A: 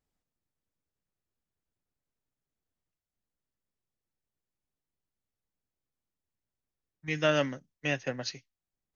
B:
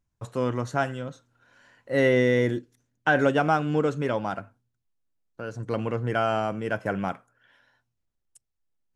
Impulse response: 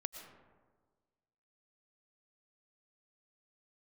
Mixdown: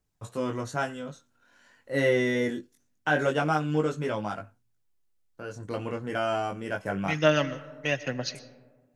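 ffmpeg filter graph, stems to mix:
-filter_complex "[0:a]aphaser=in_gain=1:out_gain=1:delay=3.1:decay=0.38:speed=1.1:type=triangular,volume=-1.5dB,asplit=2[a][b];[b]volume=-3.5dB[c];[1:a]highshelf=f=4.4k:g=7.5,flanger=delay=19:depth=2.1:speed=0.23,volume=-0.5dB[d];[2:a]atrim=start_sample=2205[e];[c][e]afir=irnorm=-1:irlink=0[f];[a][d][f]amix=inputs=3:normalize=0"

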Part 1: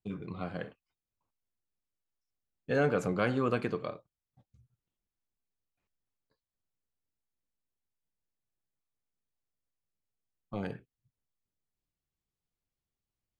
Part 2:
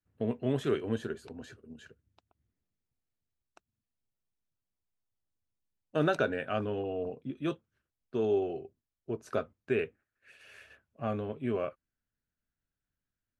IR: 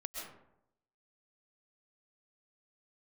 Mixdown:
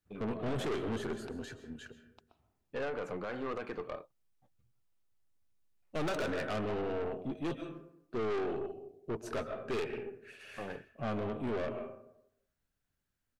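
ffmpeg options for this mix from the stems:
-filter_complex "[0:a]bass=f=250:g=-12,treble=f=4k:g=-14,alimiter=limit=-24dB:level=0:latency=1:release=126,adelay=50,volume=1dB[a];[1:a]volume=2.5dB,asplit=2[b][c];[c]volume=-6dB[d];[2:a]atrim=start_sample=2205[e];[d][e]afir=irnorm=-1:irlink=0[f];[a][b][f]amix=inputs=3:normalize=0,aeval=exprs='(tanh(39.8*val(0)+0.4)-tanh(0.4))/39.8':c=same"

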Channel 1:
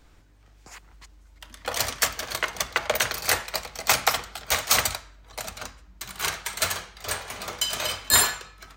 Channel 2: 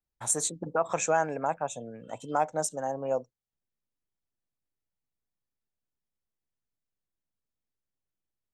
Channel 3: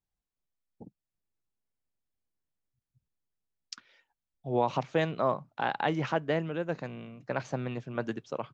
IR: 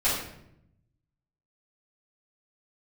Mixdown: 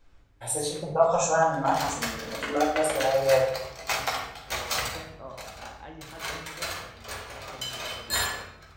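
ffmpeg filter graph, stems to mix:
-filter_complex "[0:a]equalizer=f=12k:w=0.68:g=-7.5,volume=-12dB,asplit=2[a][b];[b]volume=-7dB[c];[1:a]asplit=2[d][e];[e]afreqshift=0.41[f];[d][f]amix=inputs=2:normalize=1,adelay=200,volume=-2.5dB,asplit=2[g][h];[h]volume=-3.5dB[i];[2:a]volume=-19dB,asplit=2[j][k];[k]volume=-11.5dB[l];[3:a]atrim=start_sample=2205[m];[c][i][l]amix=inputs=3:normalize=0[n];[n][m]afir=irnorm=-1:irlink=0[o];[a][g][j][o]amix=inputs=4:normalize=0"

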